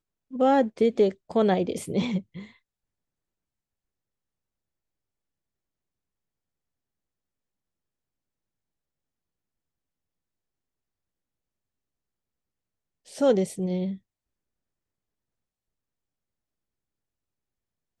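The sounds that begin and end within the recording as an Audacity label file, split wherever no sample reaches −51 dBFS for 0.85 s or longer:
13.060000	13.980000	sound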